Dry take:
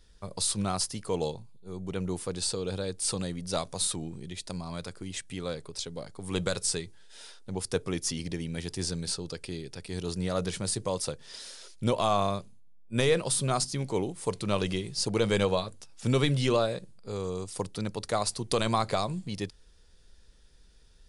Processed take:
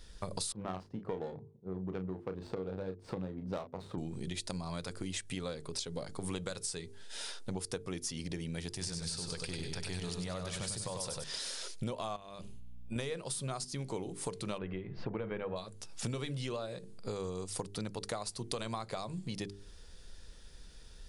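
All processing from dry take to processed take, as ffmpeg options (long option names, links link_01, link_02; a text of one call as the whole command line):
ffmpeg -i in.wav -filter_complex "[0:a]asettb=1/sr,asplit=3[link_01][link_02][link_03];[link_01]atrim=end=0.524[link_04];[link_02]atrim=start=0.52:end=3.98,asetpts=PTS-STARTPTS,afade=type=in:duration=0.004:curve=qsin,afade=type=out:start_time=3.456:duration=0.004:curve=qsin,highpass=frequency=140:poles=1,adynamicsmooth=sensitivity=1.5:basefreq=580,asplit=2[link_05][link_06];[link_06]adelay=32,volume=-8dB[link_07];[link_05][link_07]amix=inputs=2:normalize=0,atrim=end_sample=152586[link_08];[link_03]atrim=start=3.976[link_09];[link_04][link_08]acrossfade=duration=0.004:curve1=hsin:curve2=qsin[link_10];[link_10][link_09]acrossfade=duration=0.004:curve1=qsin:curve2=hsin,asettb=1/sr,asplit=3[link_11][link_12][link_13];[link_11]atrim=end=8.694[link_14];[link_12]atrim=start=8.69:end=11.24,asetpts=PTS-STARTPTS,afade=type=in:duration=0.004:curve=qsin,afade=type=out:start_time=2.546:duration=0.004:curve=qsin,acompressor=threshold=-33dB:ratio=2:attack=3.2:release=140:knee=1:detection=peak,equalizer=frequency=310:width_type=o:width=1.4:gain=-7,aecho=1:1:97|194|291|388|485:0.631|0.265|0.111|0.0467|0.0196,atrim=end_sample=112455[link_15];[link_13]atrim=start=11.236[link_16];[link_14][link_15]acrossfade=duration=0.004:curve1=hsin:curve2=qsin[link_17];[link_17][link_16]acrossfade=duration=0.004:curve1=qsin:curve2=hsin,asettb=1/sr,asplit=3[link_18][link_19][link_20];[link_18]atrim=end=12.164[link_21];[link_19]atrim=start=12.16:end=12.96,asetpts=PTS-STARTPTS,afade=type=in:duration=0.004:curve=qsin,afade=type=out:start_time=0.796:duration=0.004:curve=qsin,equalizer=frequency=2900:width_type=o:width=0.5:gain=9,acompressor=threshold=-37dB:ratio=10:attack=3.2:release=140:knee=1:detection=peak,aeval=exprs='val(0)+0.000891*(sin(2*PI*60*n/s)+sin(2*PI*2*60*n/s)/2+sin(2*PI*3*60*n/s)/3+sin(2*PI*4*60*n/s)/4+sin(2*PI*5*60*n/s)/5)':channel_layout=same[link_22];[link_20]atrim=start=12.956[link_23];[link_21][link_22]acrossfade=duration=0.004:curve1=hsin:curve2=qsin[link_24];[link_24][link_23]acrossfade=duration=0.004:curve1=qsin:curve2=hsin,asettb=1/sr,asplit=3[link_25][link_26][link_27];[link_25]atrim=end=14.584[link_28];[link_26]atrim=start=14.58:end=15.56,asetpts=PTS-STARTPTS,afade=type=in:duration=0.004:curve=qsin,afade=type=out:start_time=0.976:duration=0.004:curve=qsin,lowpass=frequency=2200:width=0.5412,lowpass=frequency=2200:width=1.3066,bandreject=frequency=84.28:width_type=h:width=4,bandreject=frequency=168.56:width_type=h:width=4,bandreject=frequency=252.84:width_type=h:width=4,bandreject=frequency=337.12:width_type=h:width=4,bandreject=frequency=421.4:width_type=h:width=4,bandreject=frequency=505.68:width_type=h:width=4,bandreject=frequency=589.96:width_type=h:width=4,bandreject=frequency=674.24:width_type=h:width=4,bandreject=frequency=758.52:width_type=h:width=4,bandreject=frequency=842.8:width_type=h:width=4,bandreject=frequency=927.08:width_type=h:width=4,bandreject=frequency=1011.36:width_type=h:width=4,bandreject=frequency=1095.64:width_type=h:width=4,bandreject=frequency=1179.92:width_type=h:width=4,bandreject=frequency=1264.2:width_type=h:width=4,bandreject=frequency=1348.48:width_type=h:width=4,bandreject=frequency=1432.76:width_type=h:width=4,bandreject=frequency=1517.04:width_type=h:width=4,bandreject=frequency=1601.32:width_type=h:width=4,bandreject=frequency=1685.6:width_type=h:width=4,bandreject=frequency=1769.88:width_type=h:width=4,bandreject=frequency=1854.16:width_type=h:width=4,bandreject=frequency=1938.44:width_type=h:width=4,bandreject=frequency=2022.72:width_type=h:width=4[link_29];[link_27]atrim=start=15.556[link_30];[link_28][link_29]acrossfade=duration=0.004:curve1=hsin:curve2=qsin[link_31];[link_31][link_30]acrossfade=duration=0.004:curve1=qsin:curve2=hsin,bandreject=frequency=50:width_type=h:width=6,bandreject=frequency=100:width_type=h:width=6,bandreject=frequency=150:width_type=h:width=6,bandreject=frequency=200:width_type=h:width=6,bandreject=frequency=250:width_type=h:width=6,bandreject=frequency=300:width_type=h:width=6,bandreject=frequency=350:width_type=h:width=6,bandreject=frequency=400:width_type=h:width=6,bandreject=frequency=450:width_type=h:width=6,acompressor=threshold=-42dB:ratio=10,volume=6.5dB" out.wav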